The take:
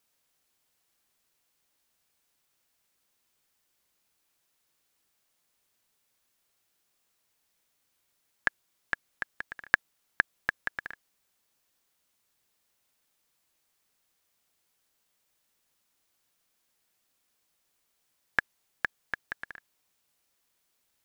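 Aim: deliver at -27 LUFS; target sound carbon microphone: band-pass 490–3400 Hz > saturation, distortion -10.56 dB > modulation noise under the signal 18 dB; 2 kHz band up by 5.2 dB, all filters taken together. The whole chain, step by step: band-pass 490–3400 Hz; peaking EQ 2 kHz +7 dB; saturation -7.5 dBFS; modulation noise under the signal 18 dB; trim +4 dB

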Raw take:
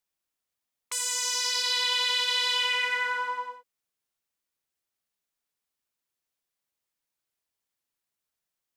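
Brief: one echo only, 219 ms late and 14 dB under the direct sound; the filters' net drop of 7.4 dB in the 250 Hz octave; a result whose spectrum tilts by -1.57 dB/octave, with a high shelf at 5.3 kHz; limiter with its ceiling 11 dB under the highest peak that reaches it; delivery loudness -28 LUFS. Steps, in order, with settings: peaking EQ 250 Hz -7.5 dB; treble shelf 5.3 kHz -7.5 dB; peak limiter -25.5 dBFS; delay 219 ms -14 dB; trim +5.5 dB

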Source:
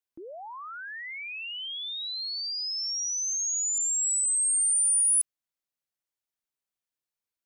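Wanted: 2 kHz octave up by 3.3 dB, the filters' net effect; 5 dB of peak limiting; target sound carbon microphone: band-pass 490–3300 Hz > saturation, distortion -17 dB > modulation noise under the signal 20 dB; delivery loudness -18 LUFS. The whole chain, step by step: peaking EQ 2 kHz +5 dB; peak limiter -24 dBFS; band-pass 490–3300 Hz; saturation -35 dBFS; modulation noise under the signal 20 dB; trim +20.5 dB

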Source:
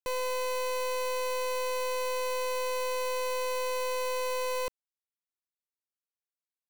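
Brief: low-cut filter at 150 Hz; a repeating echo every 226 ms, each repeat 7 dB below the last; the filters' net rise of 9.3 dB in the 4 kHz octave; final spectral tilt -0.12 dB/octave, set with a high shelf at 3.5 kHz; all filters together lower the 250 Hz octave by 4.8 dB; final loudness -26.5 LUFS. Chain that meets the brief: high-pass 150 Hz; peaking EQ 250 Hz -6.5 dB; treble shelf 3.5 kHz +4 dB; peaking EQ 4 kHz +8.5 dB; feedback delay 226 ms, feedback 45%, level -7 dB; trim +2 dB

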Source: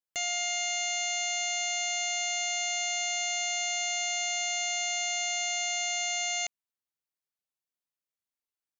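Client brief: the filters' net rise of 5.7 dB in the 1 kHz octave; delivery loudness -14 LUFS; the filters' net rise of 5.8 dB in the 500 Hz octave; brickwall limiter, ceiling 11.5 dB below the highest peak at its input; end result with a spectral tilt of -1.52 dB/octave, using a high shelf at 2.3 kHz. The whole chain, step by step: peaking EQ 500 Hz +5 dB; peaking EQ 1 kHz +6 dB; treble shelf 2.3 kHz +3.5 dB; trim +22.5 dB; peak limiter -7.5 dBFS

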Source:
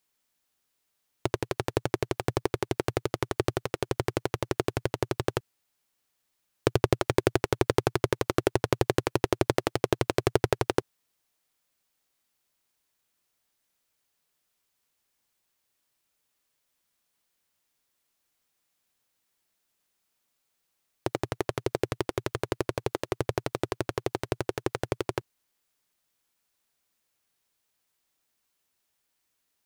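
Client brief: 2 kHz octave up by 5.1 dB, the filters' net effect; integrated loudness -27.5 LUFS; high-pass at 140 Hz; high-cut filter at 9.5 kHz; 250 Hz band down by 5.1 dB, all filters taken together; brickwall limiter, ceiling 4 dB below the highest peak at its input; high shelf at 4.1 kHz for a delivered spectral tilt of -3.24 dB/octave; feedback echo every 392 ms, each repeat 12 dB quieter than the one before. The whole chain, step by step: high-pass 140 Hz; low-pass 9.5 kHz; peaking EQ 250 Hz -8.5 dB; peaking EQ 2 kHz +8 dB; treble shelf 4.1 kHz -7 dB; peak limiter -7.5 dBFS; feedback delay 392 ms, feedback 25%, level -12 dB; trim +5 dB

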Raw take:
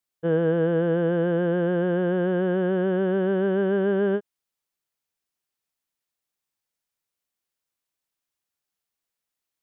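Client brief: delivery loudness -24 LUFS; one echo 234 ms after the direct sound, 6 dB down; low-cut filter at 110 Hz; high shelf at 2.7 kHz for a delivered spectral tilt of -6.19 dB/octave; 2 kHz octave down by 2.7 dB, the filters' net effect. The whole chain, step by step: high-pass 110 Hz; peaking EQ 2 kHz -6.5 dB; treble shelf 2.7 kHz +7 dB; delay 234 ms -6 dB; trim -1 dB

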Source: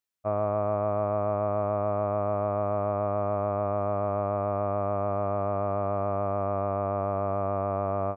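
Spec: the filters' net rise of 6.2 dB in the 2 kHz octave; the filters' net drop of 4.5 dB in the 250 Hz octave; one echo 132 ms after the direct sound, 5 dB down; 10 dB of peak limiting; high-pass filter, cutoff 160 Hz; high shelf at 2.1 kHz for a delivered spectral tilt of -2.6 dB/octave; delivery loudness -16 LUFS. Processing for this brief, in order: high-pass 160 Hz; peaking EQ 250 Hz -5 dB; peaking EQ 2 kHz +6.5 dB; treble shelf 2.1 kHz +4 dB; peak limiter -26.5 dBFS; delay 132 ms -5 dB; trim +19.5 dB

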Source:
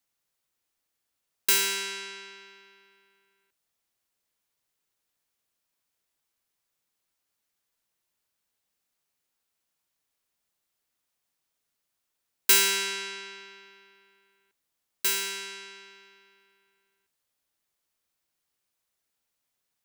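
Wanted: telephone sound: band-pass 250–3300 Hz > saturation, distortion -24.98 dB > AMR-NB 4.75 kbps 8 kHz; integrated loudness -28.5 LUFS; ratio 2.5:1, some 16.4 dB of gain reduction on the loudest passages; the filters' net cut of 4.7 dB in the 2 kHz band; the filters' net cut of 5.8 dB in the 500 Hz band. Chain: peaking EQ 500 Hz -7.5 dB; peaking EQ 2 kHz -5 dB; compression 2.5:1, threshold -41 dBFS; band-pass 250–3300 Hz; saturation -34.5 dBFS; trim +20.5 dB; AMR-NB 4.75 kbps 8 kHz

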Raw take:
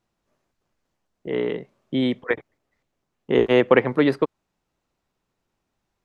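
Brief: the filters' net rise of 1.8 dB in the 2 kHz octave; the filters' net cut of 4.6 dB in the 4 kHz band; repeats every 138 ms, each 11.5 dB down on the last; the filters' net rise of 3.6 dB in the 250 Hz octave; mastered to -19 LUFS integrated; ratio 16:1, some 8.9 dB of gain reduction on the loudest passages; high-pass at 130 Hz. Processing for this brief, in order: high-pass 130 Hz; peaking EQ 250 Hz +4.5 dB; peaking EQ 2 kHz +4 dB; peaking EQ 4 kHz -9 dB; compression 16:1, threshold -17 dBFS; feedback delay 138 ms, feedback 27%, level -11.5 dB; trim +6 dB

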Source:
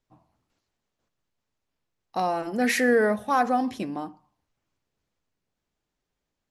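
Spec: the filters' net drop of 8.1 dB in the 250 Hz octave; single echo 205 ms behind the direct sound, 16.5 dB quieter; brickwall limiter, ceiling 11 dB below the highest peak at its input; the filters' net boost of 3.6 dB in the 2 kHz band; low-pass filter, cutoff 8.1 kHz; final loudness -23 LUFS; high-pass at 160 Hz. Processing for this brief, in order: high-pass 160 Hz; low-pass 8.1 kHz; peaking EQ 250 Hz -8 dB; peaking EQ 2 kHz +4.5 dB; peak limiter -20.5 dBFS; delay 205 ms -16.5 dB; trim +7.5 dB

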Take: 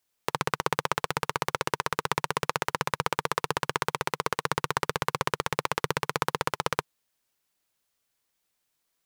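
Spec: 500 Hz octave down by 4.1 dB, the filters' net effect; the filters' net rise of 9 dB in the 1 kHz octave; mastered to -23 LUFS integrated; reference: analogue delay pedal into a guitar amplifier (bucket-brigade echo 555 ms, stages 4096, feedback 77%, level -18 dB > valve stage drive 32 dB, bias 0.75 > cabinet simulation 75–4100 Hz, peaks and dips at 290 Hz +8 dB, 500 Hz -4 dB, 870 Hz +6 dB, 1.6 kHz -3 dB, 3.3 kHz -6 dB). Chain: peaking EQ 500 Hz -6 dB; peaking EQ 1 kHz +8.5 dB; bucket-brigade echo 555 ms, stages 4096, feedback 77%, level -18 dB; valve stage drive 32 dB, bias 0.75; cabinet simulation 75–4100 Hz, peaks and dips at 290 Hz +8 dB, 500 Hz -4 dB, 870 Hz +6 dB, 1.6 kHz -3 dB, 3.3 kHz -6 dB; trim +16.5 dB

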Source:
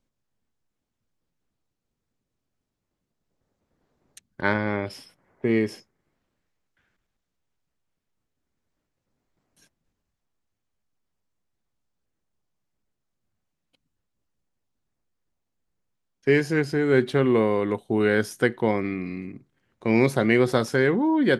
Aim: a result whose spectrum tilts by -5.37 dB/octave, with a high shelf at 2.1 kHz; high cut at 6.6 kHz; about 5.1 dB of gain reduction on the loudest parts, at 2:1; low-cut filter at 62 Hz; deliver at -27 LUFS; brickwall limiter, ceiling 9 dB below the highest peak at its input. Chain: high-pass 62 Hz; low-pass 6.6 kHz; treble shelf 2.1 kHz +3 dB; compression 2:1, threshold -23 dBFS; trim +2 dB; peak limiter -15 dBFS

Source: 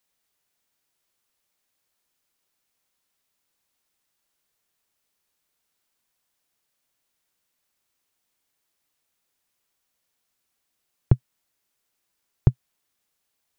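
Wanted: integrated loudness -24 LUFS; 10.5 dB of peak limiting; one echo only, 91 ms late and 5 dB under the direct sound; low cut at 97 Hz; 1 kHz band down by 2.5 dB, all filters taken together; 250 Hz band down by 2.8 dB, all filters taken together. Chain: high-pass 97 Hz; peaking EQ 250 Hz -5 dB; peaking EQ 1 kHz -3 dB; peak limiter -18 dBFS; delay 91 ms -5 dB; trim +12.5 dB

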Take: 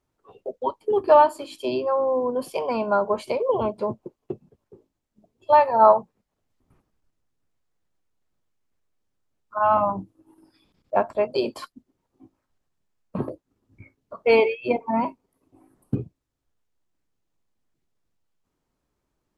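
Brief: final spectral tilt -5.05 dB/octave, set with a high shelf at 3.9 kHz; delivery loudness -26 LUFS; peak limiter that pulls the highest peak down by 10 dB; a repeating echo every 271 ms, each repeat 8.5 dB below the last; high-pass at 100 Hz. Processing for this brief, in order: high-pass 100 Hz; treble shelf 3.9 kHz -7.5 dB; peak limiter -14 dBFS; feedback delay 271 ms, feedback 38%, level -8.5 dB

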